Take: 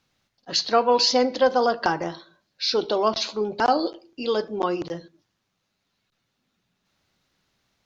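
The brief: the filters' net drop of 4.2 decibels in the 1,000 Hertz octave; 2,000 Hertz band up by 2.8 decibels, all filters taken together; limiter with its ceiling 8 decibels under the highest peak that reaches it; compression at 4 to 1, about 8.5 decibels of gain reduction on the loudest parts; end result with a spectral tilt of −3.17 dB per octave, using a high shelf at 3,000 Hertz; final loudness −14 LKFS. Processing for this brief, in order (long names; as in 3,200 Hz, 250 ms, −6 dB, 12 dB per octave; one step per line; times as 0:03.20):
parametric band 1,000 Hz −8 dB
parametric band 2,000 Hz +6 dB
high-shelf EQ 3,000 Hz +5.5 dB
downward compressor 4 to 1, threshold −23 dBFS
level +15 dB
brickwall limiter −3 dBFS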